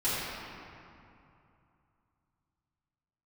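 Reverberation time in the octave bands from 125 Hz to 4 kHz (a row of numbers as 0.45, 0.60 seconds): 3.6, 2.9, 2.6, 2.8, 2.3, 1.6 seconds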